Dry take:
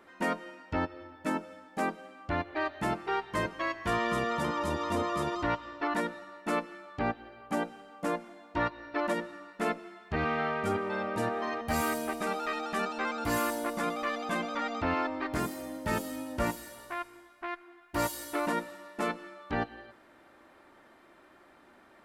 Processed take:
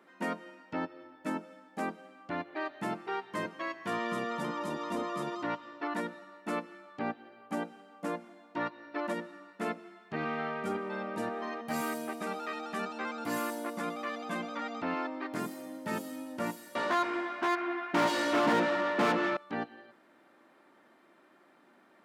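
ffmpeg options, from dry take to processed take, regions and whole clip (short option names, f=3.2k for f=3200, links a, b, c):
-filter_complex "[0:a]asettb=1/sr,asplit=3[a][b][c];[a]atrim=end=16.754[d];[b]atrim=start=16.75:end=19.37,asetpts=PTS-STARTPTS,afade=t=in:d=0.004:c=qsin,afade=t=out:st=2.616:d=0.004:c=qsin,lowpass=4.8k,equalizer=f=130:w=0.33:g=6,asplit=2[e][f];[f]highpass=f=720:p=1,volume=34dB,asoftclip=type=tanh:threshold=-15.5dB[g];[e][g]amix=inputs=2:normalize=0,lowpass=f=2.3k:p=1,volume=-6dB[h];[c]atrim=start=19.366[i];[d][h]acrossfade=d=0.004:c1=hsin:c2=qsin[j];[j][i]acrossfade=d=0.004:c1=qsin:c2=hsin,highpass=f=170:w=0.5412,highpass=f=170:w=1.3066,bass=f=250:g=5,treble=f=4k:g=-1,volume=-4.5dB"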